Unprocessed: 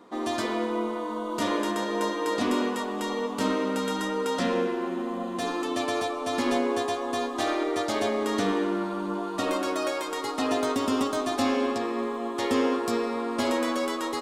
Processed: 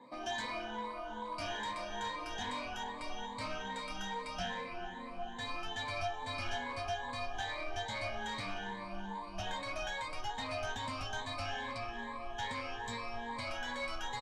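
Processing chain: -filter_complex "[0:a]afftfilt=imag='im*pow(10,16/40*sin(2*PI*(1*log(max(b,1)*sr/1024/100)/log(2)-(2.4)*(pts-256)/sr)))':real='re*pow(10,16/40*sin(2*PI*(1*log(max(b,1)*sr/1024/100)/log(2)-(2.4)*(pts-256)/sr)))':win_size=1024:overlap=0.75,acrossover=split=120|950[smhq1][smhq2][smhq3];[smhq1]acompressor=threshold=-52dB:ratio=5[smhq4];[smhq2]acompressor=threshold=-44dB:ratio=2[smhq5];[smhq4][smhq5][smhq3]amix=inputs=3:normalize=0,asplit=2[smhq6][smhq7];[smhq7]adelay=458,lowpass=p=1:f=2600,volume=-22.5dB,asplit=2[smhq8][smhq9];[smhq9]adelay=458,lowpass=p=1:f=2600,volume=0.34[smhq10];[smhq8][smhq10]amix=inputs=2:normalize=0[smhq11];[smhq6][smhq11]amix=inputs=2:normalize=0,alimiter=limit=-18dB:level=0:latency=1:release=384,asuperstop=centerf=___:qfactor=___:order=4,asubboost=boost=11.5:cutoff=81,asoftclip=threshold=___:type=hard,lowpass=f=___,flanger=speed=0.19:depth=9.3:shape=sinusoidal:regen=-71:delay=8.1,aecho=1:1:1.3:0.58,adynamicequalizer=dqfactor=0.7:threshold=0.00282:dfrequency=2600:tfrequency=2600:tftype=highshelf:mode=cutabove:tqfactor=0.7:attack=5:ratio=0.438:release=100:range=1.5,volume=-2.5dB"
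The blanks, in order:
1400, 7.8, -27.5dB, 5600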